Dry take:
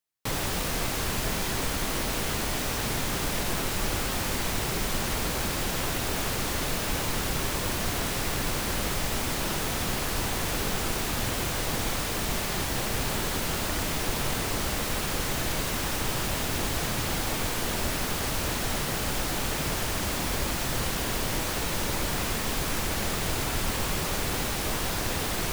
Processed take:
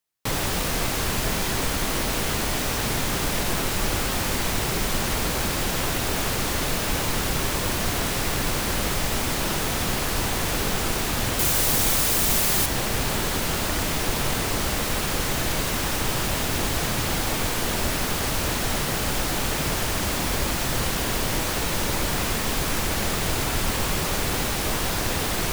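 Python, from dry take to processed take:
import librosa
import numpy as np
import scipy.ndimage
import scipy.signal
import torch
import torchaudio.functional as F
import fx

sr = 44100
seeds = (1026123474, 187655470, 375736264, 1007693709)

y = fx.high_shelf(x, sr, hz=6200.0, db=11.0, at=(11.39, 12.66))
y = y * 10.0 ** (4.0 / 20.0)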